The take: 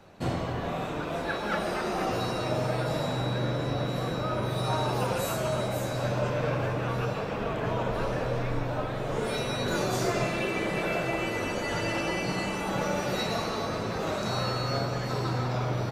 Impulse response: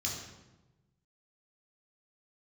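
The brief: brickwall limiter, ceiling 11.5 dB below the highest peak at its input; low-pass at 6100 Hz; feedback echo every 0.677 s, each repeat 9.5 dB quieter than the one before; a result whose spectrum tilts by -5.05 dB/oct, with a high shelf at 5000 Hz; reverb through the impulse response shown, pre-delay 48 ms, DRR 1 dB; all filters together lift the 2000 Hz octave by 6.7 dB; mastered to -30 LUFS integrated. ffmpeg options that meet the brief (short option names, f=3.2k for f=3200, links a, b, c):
-filter_complex "[0:a]lowpass=6.1k,equalizer=f=2k:t=o:g=8,highshelf=f=5k:g=4.5,alimiter=level_in=0.5dB:limit=-24dB:level=0:latency=1,volume=-0.5dB,aecho=1:1:677|1354|2031|2708:0.335|0.111|0.0365|0.012,asplit=2[a][b];[1:a]atrim=start_sample=2205,adelay=48[c];[b][c]afir=irnorm=-1:irlink=0,volume=-4dB[d];[a][d]amix=inputs=2:normalize=0,volume=-3dB"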